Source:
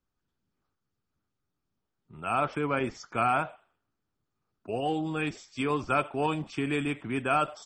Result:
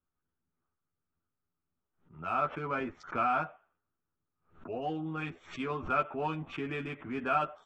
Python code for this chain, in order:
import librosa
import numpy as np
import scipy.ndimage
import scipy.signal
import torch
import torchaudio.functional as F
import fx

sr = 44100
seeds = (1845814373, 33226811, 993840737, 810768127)

y = fx.wiener(x, sr, points=9)
y = scipy.signal.sosfilt(scipy.signal.butter(2, 4300.0, 'lowpass', fs=sr, output='sos'), y)
y = fx.peak_eq(y, sr, hz=1300.0, db=4.5, octaves=0.58)
y = fx.doubler(y, sr, ms=12.0, db=-3)
y = fx.pre_swell(y, sr, db_per_s=150.0)
y = y * 10.0 ** (-7.5 / 20.0)